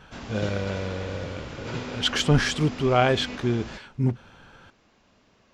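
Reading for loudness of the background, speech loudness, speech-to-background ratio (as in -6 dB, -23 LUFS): -37.0 LUFS, -25.5 LUFS, 11.5 dB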